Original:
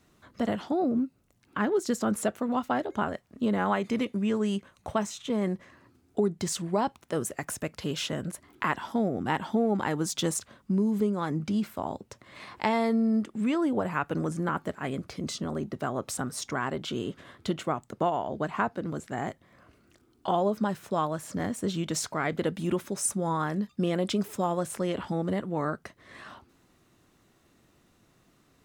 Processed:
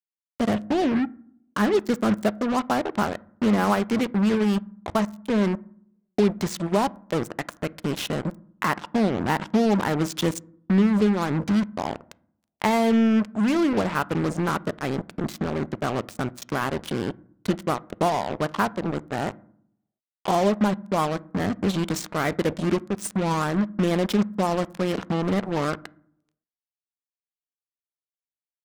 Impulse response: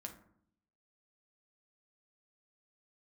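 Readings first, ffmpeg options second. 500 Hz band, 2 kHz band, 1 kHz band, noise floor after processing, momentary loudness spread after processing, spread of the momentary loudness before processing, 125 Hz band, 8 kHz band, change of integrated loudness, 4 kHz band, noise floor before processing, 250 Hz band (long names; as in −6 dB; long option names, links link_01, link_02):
+4.5 dB, +5.0 dB, +4.5 dB, below −85 dBFS, 9 LU, 8 LU, +6.0 dB, −2.5 dB, +5.0 dB, +4.0 dB, −65 dBFS, +6.0 dB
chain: -filter_complex "[0:a]lowpass=6800,lowshelf=frequency=170:gain=3.5,acrusher=bits=4:mix=0:aa=0.5,asplit=2[link_01][link_02];[1:a]atrim=start_sample=2205,lowpass=2800[link_03];[link_02][link_03]afir=irnorm=-1:irlink=0,volume=-8.5dB[link_04];[link_01][link_04]amix=inputs=2:normalize=0,volume=2.5dB"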